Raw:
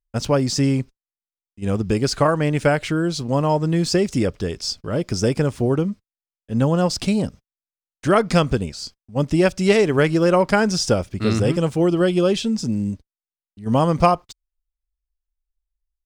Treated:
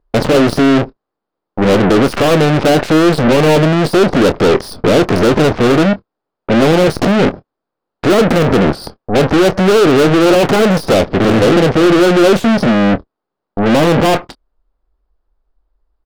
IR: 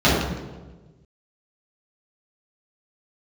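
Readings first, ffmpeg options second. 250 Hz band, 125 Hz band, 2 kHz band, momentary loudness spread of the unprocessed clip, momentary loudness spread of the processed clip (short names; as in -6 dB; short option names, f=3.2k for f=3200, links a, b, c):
+9.5 dB, +5.5 dB, +10.5 dB, 10 LU, 7 LU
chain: -filter_complex "[0:a]highshelf=f=1.7k:t=q:w=1.5:g=-8.5,aresample=11025,aresample=44100,apsyclip=17dB,aeval=exprs='(tanh(14.1*val(0)+0.3)-tanh(0.3))/14.1':c=same,equalizer=f=390:w=0.41:g=14,aeval=exprs='0.473*(cos(1*acos(clip(val(0)/0.473,-1,1)))-cos(1*PI/2))+0.119*(cos(7*acos(clip(val(0)/0.473,-1,1)))-cos(7*PI/2))+0.015*(cos(8*acos(clip(val(0)/0.473,-1,1)))-cos(8*PI/2))':c=same,asplit=2[a][b];[b]adelay=26,volume=-14dB[c];[a][c]amix=inputs=2:normalize=0,volume=2.5dB"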